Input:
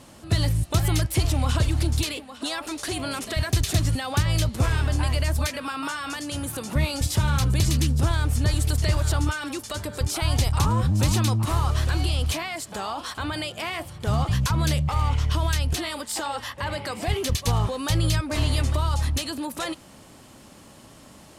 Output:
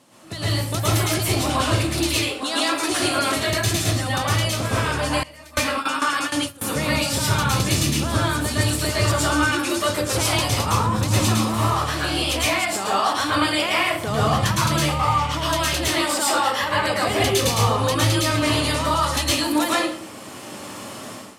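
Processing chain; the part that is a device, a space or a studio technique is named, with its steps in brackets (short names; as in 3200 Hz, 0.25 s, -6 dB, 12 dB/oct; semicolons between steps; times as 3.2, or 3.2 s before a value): far laptop microphone (reverb RT60 0.55 s, pre-delay 0.105 s, DRR -7 dB; HPF 180 Hz 12 dB/oct; AGC gain up to 15 dB); 5.23–6.7 gate with hold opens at -5 dBFS; gain -6.5 dB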